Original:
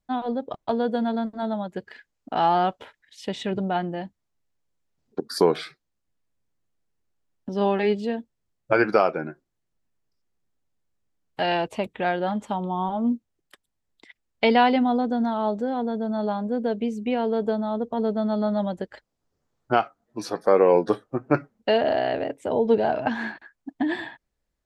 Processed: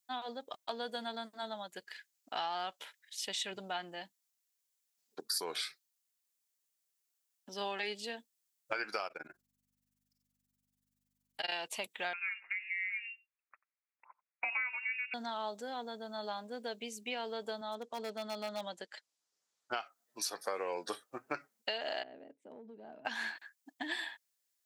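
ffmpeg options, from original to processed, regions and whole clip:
-filter_complex "[0:a]asettb=1/sr,asplit=3[s0][s1][s2];[s0]atrim=end=9.074[s3];[s1]atrim=start=9.07:end=11.52,asetpts=PTS-STARTPTS,afade=t=in:d=0.004:c=qsin,afade=t=out:st=2.446:d=0.004:c=qsin,tremolo=f=21:d=0.974,aeval=exprs='val(0)+0.00178*(sin(2*PI*50*n/s)+sin(2*PI*2*50*n/s)/2+sin(2*PI*3*50*n/s)/3+sin(2*PI*4*50*n/s)/4+sin(2*PI*5*50*n/s)/5)':c=same[s4];[s2]atrim=start=11.516[s5];[s3][s4]acrossfade=d=0.004:c1=hsin:c2=qsin[s6];[s6][s5]acrossfade=d=0.004:c1=qsin:c2=hsin,asettb=1/sr,asplit=3[s7][s8][s9];[s7]atrim=end=12.134[s10];[s8]atrim=start=12.13:end=15.14,asetpts=PTS-STARTPTS,afade=t=in:d=0.004:c=qsin,afade=t=out:st=3.006:d=0.004:c=qsin,highpass=970,lowpass=f=2600:t=q:w=0.5098,lowpass=f=2600:t=q:w=0.6013,lowpass=f=2600:t=q:w=0.9,lowpass=f=2600:t=q:w=2.563,afreqshift=-3000,aecho=1:1:89:0.075,atrim=end_sample=132741[s11];[s9]atrim=start=15.136[s12];[s10][s11]acrossfade=d=0.004:c1=hsin:c2=qsin[s13];[s13][s12]acrossfade=d=0.004:c1=qsin:c2=hsin,asettb=1/sr,asplit=3[s14][s15][s16];[s14]atrim=end=17.614[s17];[s15]atrim=start=17.61:end=19.72,asetpts=PTS-STARTPTS,afade=t=in:d=0.004:c=qsin,afade=t=out:st=2.106:d=0.004:c=qsin,highpass=130,lowpass=7700,volume=7.08,asoftclip=hard,volume=0.141[s18];[s16]atrim=start=19.716[s19];[s17][s18]acrossfade=d=0.004:c1=hsin:c2=qsin[s20];[s20][s19]acrossfade=d=0.004:c1=qsin:c2=hsin,asettb=1/sr,asplit=3[s21][s22][s23];[s21]atrim=end=22.034[s24];[s22]atrim=start=22.03:end=23.05,asetpts=PTS-STARTPTS,afade=t=in:d=0.004:c=qsin,afade=t=out:st=1.016:d=0.004:c=qsin,bandpass=f=220:t=q:w=1.9,acompressor=threshold=0.0355:ratio=6:attack=3.2:release=140:knee=1:detection=peak[s25];[s23]atrim=start=23.046[s26];[s24][s25]acrossfade=d=0.004:c1=hsin:c2=qsin[s27];[s27][s26]acrossfade=d=0.004:c1=qsin:c2=hsin,aderivative,acompressor=threshold=0.01:ratio=10,volume=2.37"

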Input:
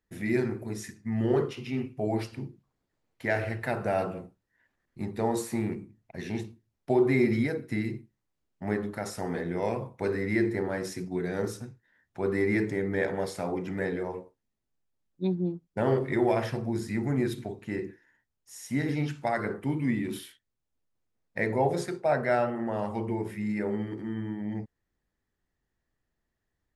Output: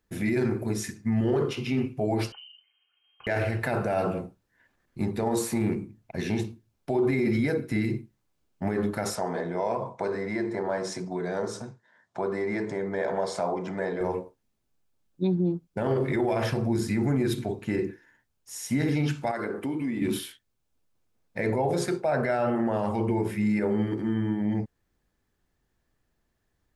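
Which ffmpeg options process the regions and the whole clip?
-filter_complex "[0:a]asettb=1/sr,asplit=3[s0][s1][s2];[s0]atrim=end=2.324[s3];[s1]atrim=start=2.32:end=3.27,asetpts=PTS-STARTPTS,afade=t=in:d=0.004:c=qsin,afade=t=out:st=0.946:d=0.004:c=qsin,aecho=1:1:2.9:0.51,atrim=end_sample=41895,acompressor=threshold=0.002:ratio=4:attack=3.2:release=140:knee=1:detection=peak,lowpass=f=2700:t=q:w=0.5098,lowpass=f=2700:t=q:w=0.6013,lowpass=f=2700:t=q:w=0.9,lowpass=f=2700:t=q:w=2.563,afreqshift=-3200[s4];[s2]atrim=start=3.266[s5];[s3][s4]acrossfade=d=0.004:c1=hsin:c2=qsin[s6];[s6][s5]acrossfade=d=0.004:c1=qsin:c2=hsin,asettb=1/sr,asplit=3[s7][s8][s9];[s7]atrim=end=9.154[s10];[s8]atrim=start=9.15:end=14.01,asetpts=PTS-STARTPTS,afade=t=in:d=0.004:c=qsin,afade=t=out:st=4.856:d=0.004:c=qsin,acompressor=threshold=0.0141:ratio=2:attack=3.2:release=140:knee=1:detection=peak,highpass=160,equalizer=f=290:t=q:w=4:g=-6,equalizer=f=650:t=q:w=4:g=8,equalizer=f=990:t=q:w=4:g=8,equalizer=f=2600:t=q:w=4:g=-6,lowpass=f=8500:w=0.5412,lowpass=f=8500:w=1.3066[s11];[s9]atrim=start=14.006[s12];[s10][s11]acrossfade=d=0.004:c1=hsin:c2=qsin[s13];[s13][s12]acrossfade=d=0.004:c1=qsin:c2=hsin,asettb=1/sr,asplit=3[s14][s15][s16];[s14]atrim=end=19.314[s17];[s15]atrim=start=19.31:end=20.02,asetpts=PTS-STARTPTS,afade=t=in:d=0.004:c=qsin,afade=t=out:st=0.706:d=0.004:c=qsin,lowshelf=f=200:t=q:w=1.5:g=-6.5,acompressor=threshold=0.02:ratio=5:attack=3.2:release=140:knee=1:detection=peak[s18];[s16]atrim=start=20.016[s19];[s17][s18]acrossfade=d=0.004:c1=hsin:c2=qsin[s20];[s20][s19]acrossfade=d=0.004:c1=qsin:c2=hsin,bandreject=f=1900:w=13,alimiter=level_in=1.06:limit=0.0631:level=0:latency=1:release=41,volume=0.944,volume=2.24"

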